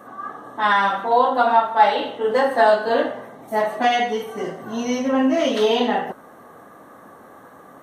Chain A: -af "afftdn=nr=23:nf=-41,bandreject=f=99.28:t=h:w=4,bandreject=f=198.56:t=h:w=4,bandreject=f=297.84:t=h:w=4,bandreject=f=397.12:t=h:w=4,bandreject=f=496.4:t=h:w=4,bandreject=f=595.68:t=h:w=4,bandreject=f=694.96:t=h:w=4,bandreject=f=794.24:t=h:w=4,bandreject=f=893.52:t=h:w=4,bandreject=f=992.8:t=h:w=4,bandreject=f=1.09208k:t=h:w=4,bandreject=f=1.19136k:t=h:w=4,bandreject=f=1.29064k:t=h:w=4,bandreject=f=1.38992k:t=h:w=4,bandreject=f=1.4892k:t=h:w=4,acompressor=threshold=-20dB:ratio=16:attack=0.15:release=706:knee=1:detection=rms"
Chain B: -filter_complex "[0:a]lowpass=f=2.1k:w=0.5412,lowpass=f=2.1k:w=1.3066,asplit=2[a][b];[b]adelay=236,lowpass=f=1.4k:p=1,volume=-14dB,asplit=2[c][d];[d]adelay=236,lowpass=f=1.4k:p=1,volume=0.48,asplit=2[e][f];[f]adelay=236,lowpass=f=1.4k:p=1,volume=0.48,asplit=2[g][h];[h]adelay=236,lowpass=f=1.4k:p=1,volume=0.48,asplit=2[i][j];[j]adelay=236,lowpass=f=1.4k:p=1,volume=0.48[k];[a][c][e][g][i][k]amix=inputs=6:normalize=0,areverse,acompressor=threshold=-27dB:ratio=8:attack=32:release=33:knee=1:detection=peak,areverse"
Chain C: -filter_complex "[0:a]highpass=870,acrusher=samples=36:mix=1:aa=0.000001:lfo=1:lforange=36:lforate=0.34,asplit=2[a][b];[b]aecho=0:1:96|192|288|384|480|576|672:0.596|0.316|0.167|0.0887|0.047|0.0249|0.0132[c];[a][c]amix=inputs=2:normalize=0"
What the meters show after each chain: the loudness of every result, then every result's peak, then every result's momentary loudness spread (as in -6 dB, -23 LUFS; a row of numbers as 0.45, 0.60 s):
-30.0, -26.5, -23.0 LUFS; -18.5, -12.5, -5.0 dBFS; 20, 20, 16 LU